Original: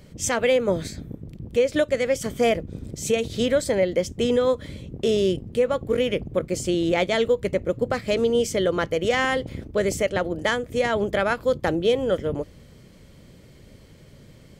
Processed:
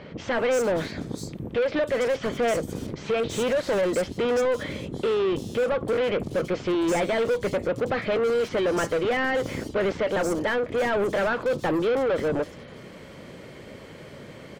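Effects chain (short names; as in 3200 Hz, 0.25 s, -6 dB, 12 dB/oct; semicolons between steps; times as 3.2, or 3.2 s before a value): overdrive pedal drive 29 dB, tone 1600 Hz, clips at -10 dBFS; bands offset in time lows, highs 0.33 s, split 4600 Hz; gain -6.5 dB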